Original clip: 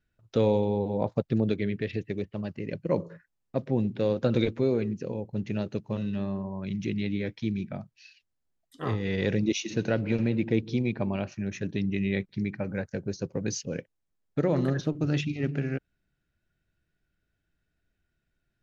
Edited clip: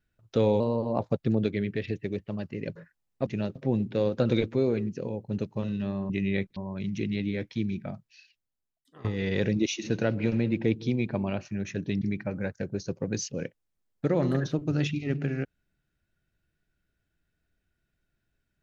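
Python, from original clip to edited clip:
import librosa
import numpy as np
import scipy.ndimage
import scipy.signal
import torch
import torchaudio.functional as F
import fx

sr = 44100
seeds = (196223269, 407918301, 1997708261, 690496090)

y = fx.edit(x, sr, fx.speed_span(start_s=0.6, length_s=0.45, speed=1.14),
    fx.cut(start_s=2.81, length_s=0.28),
    fx.move(start_s=5.43, length_s=0.29, to_s=3.6),
    fx.fade_out_to(start_s=7.76, length_s=1.15, floor_db=-22.0),
    fx.move(start_s=11.88, length_s=0.47, to_s=6.43), tone=tone)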